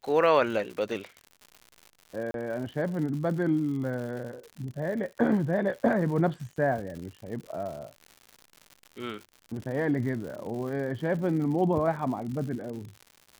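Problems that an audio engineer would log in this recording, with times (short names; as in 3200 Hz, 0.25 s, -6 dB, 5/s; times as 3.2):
crackle 140/s -37 dBFS
2.31–2.34 gap 32 ms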